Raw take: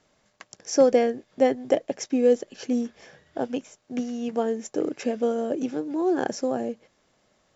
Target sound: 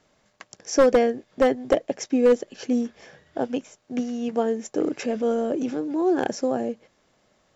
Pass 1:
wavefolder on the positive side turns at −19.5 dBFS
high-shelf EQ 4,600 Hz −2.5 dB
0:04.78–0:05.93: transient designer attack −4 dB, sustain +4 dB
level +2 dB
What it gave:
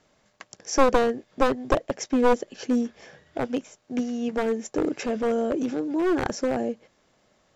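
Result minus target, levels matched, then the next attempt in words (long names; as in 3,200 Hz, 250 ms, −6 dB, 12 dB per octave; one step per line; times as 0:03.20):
wavefolder on the positive side: distortion +12 dB
wavefolder on the positive side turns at −12.5 dBFS
high-shelf EQ 4,600 Hz −2.5 dB
0:04.78–0:05.93: transient designer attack −4 dB, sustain +4 dB
level +2 dB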